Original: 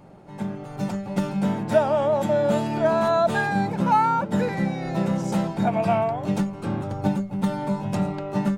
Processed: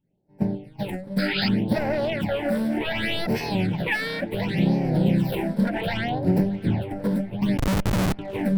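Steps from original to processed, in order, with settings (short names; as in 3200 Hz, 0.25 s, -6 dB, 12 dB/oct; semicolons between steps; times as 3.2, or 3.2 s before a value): self-modulated delay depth 0.81 ms; notches 50/100/150/200 Hz; expander -27 dBFS; in parallel at +2.5 dB: vocal rider within 4 dB 2 s; on the sum: limiter -10 dBFS, peak gain reduction 9.5 dB; fixed phaser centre 2900 Hz, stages 4; 1.18–1.49 painted sound noise 1300–5100 Hz -24 dBFS; phaser stages 8, 0.67 Hz, lowest notch 100–3400 Hz; 7.58–8.19 Schmitt trigger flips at -20 dBFS; on a send: tape echo 0.622 s, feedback 69%, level -18 dB, low-pass 4100 Hz; on the sum: record warp 45 rpm, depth 100 cents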